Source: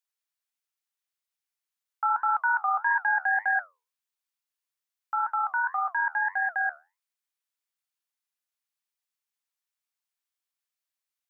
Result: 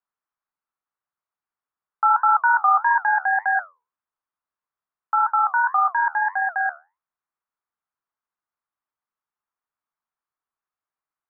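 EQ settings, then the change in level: synth low-pass 1200 Hz, resonance Q 2.1; notch 530 Hz, Q 12; +3.5 dB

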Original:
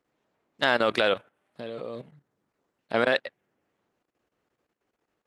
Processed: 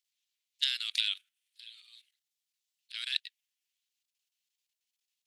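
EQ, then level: inverse Chebyshev high-pass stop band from 720 Hz, stop band 70 dB; +4.0 dB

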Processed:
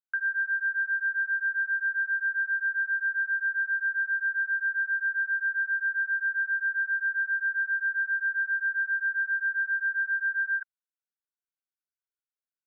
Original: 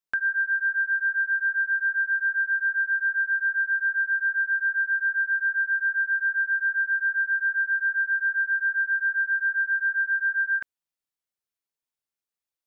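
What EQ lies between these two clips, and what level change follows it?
band-pass 1500 Hz, Q 9.8; 0.0 dB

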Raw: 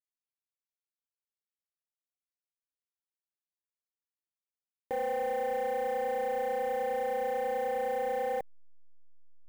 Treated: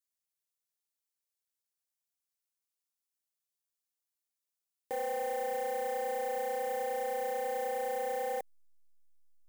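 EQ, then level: tone controls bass -8 dB, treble +10 dB; -2.5 dB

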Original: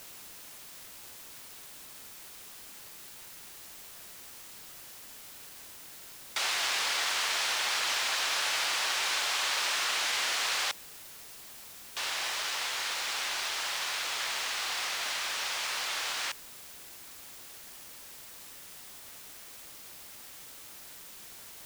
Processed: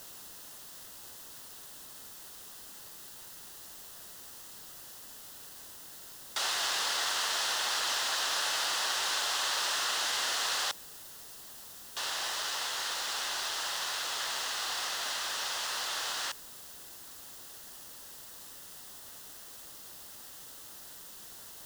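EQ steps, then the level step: bell 2300 Hz -13 dB 0.27 oct; 0.0 dB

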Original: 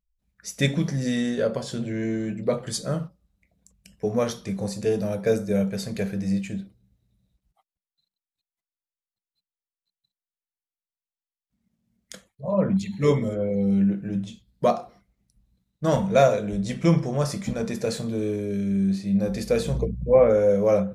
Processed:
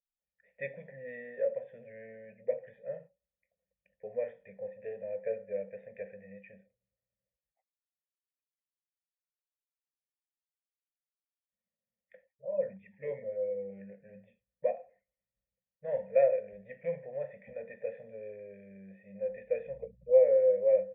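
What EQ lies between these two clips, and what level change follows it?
vocal tract filter e; low shelf 180 Hz -11.5 dB; fixed phaser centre 1200 Hz, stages 6; 0.0 dB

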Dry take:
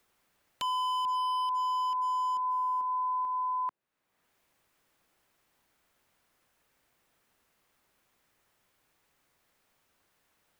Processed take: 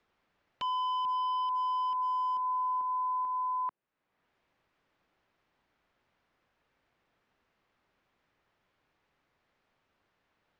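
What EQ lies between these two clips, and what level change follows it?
air absorption 200 m; 0.0 dB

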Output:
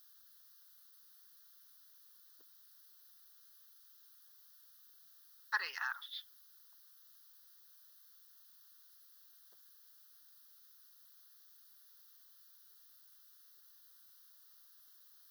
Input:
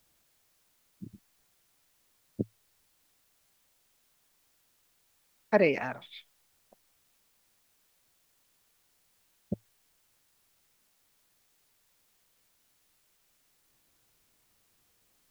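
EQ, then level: HPF 1400 Hz 24 dB/oct; bell 2500 Hz -14 dB 1.3 oct; fixed phaser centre 2300 Hz, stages 6; +12.0 dB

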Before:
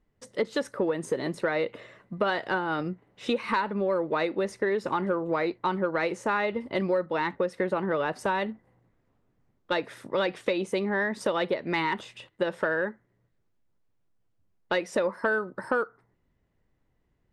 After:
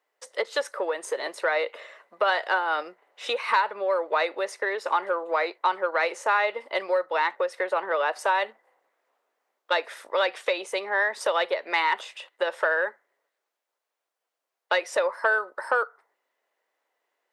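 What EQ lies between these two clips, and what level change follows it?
HPF 540 Hz 24 dB/oct; +5.0 dB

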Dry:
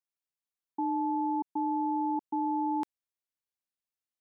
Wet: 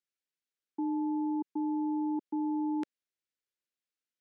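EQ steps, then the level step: HPF 200 Hz; air absorption 60 m; band shelf 880 Hz -12 dB 1 oct; +2.0 dB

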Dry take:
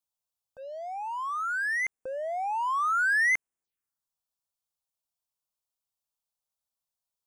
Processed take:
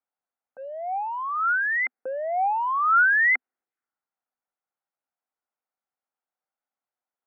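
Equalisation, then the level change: speaker cabinet 240–2200 Hz, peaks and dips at 250 Hz +8 dB, 350 Hz +4 dB, 510 Hz +4 dB, 770 Hz +8 dB, 1400 Hz +8 dB, 2000 Hz +5 dB; 0.0 dB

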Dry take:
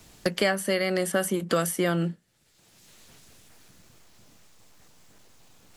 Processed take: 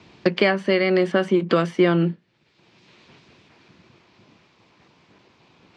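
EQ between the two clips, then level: speaker cabinet 140–4500 Hz, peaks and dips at 360 Hz +6 dB, 1000 Hz +6 dB, 2400 Hz +6 dB; low shelf 210 Hz +8 dB; +2.5 dB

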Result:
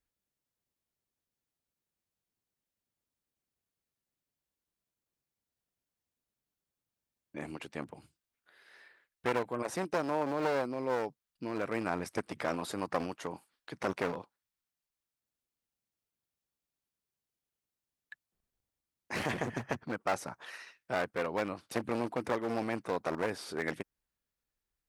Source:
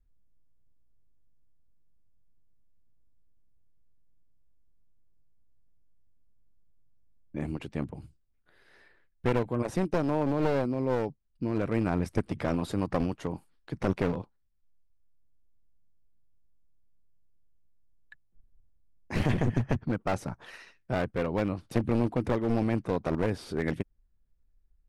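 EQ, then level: HPF 1000 Hz 6 dB/oct; dynamic EQ 3100 Hz, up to -4 dB, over -54 dBFS, Q 1.3; +3.5 dB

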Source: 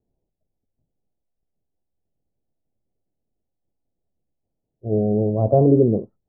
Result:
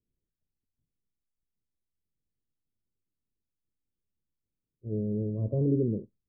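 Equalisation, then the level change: running mean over 59 samples; -8.5 dB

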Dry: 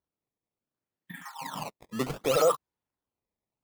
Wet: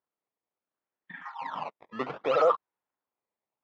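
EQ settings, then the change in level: band-pass 1200 Hz, Q 0.67; air absorption 210 m; +4.5 dB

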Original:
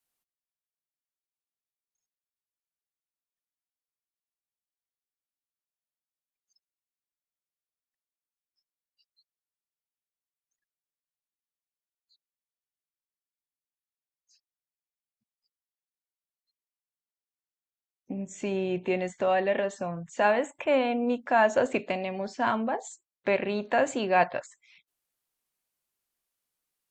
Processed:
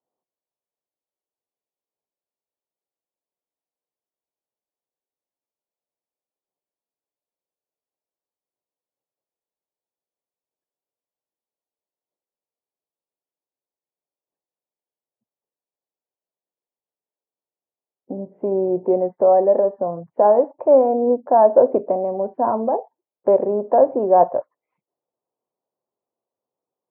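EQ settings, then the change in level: elliptic band-pass 100–1000 Hz, stop band 80 dB; bell 520 Hz +14.5 dB 1.8 oct; -1.0 dB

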